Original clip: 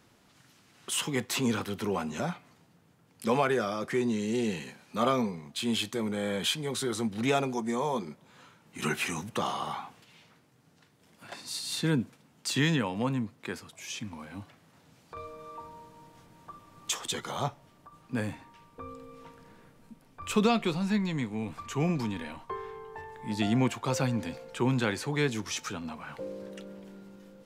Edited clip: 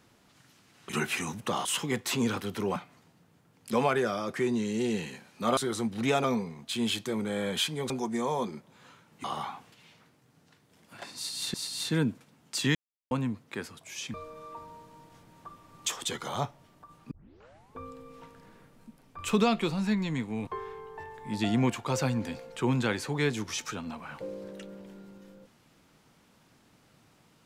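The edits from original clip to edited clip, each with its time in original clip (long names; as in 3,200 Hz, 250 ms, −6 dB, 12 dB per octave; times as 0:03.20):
0:02.00–0:02.30: remove
0:06.77–0:07.44: move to 0:05.11
0:08.78–0:09.54: move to 0:00.89
0:11.46–0:11.84: repeat, 2 plays
0:12.67–0:13.03: silence
0:14.06–0:15.17: remove
0:18.14: tape start 0.67 s
0:21.50–0:22.45: remove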